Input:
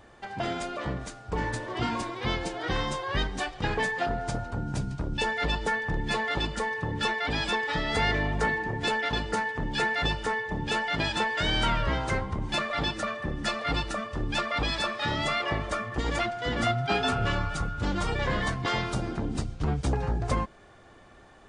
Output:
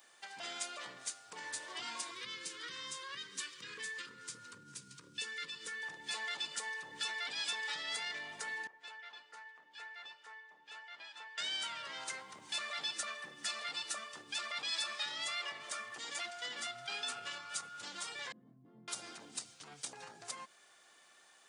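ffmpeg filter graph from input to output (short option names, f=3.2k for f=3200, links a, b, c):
-filter_complex "[0:a]asettb=1/sr,asplit=3[a][b][c];[a]atrim=end=2.114[d];[b]atrim=start=2.11:end=5.83,asetpts=PTS-STARTPTS,afade=t=in:d=0.004:c=qsin,afade=t=out:st=3.716:d=0.004:c=qsin,acompressor=threshold=-32dB:ratio=4:attack=3.2:release=140:knee=1:detection=peak,asuperstop=centerf=730:order=8:qfactor=1.7,equalizer=f=110:w=0.51:g=7.5[e];[c]atrim=start=5.826[f];[d][e]acrossfade=d=0.004:c1=hsin:c2=qsin[g];[g][f]acrossfade=d=0.004:c1=qsin:c2=hsin,asettb=1/sr,asplit=3[h][i][j];[h]atrim=end=8.674[k];[i]atrim=start=8.67:end=11.38,asetpts=PTS-STARTPTS,afade=t=in:d=0.004:c=qsin,afade=t=out:st=2.706:d=0.004:c=qsin,lowpass=1.1k,aderivative,acontrast=84[l];[j]atrim=start=11.376[m];[k][l]acrossfade=d=0.004:c1=hsin:c2=qsin[n];[n][m]acrossfade=d=0.004:c1=qsin:c2=hsin,asettb=1/sr,asplit=3[o][p][q];[o]atrim=end=18.324[r];[p]atrim=start=18.32:end=18.88,asetpts=PTS-STARTPTS,afade=t=in:d=0.004:c=qsin,afade=t=out:st=0.556:d=0.004:c=qsin,asuperpass=centerf=190:order=4:qfactor=1.4,asplit=2[s][t];[t]adelay=23,volume=-3.5dB[u];[s][u]amix=inputs=2:normalize=0,atrim=end_sample=24696[v];[q]atrim=start=18.876[w];[r][v]acrossfade=d=0.004:c1=hsin:c2=qsin[x];[x][w]acrossfade=d=0.004:c1=qsin:c2=hsin,alimiter=limit=-24dB:level=0:latency=1:release=77,highpass=f=120:w=0.5412,highpass=f=120:w=1.3066,aderivative,volume=5dB"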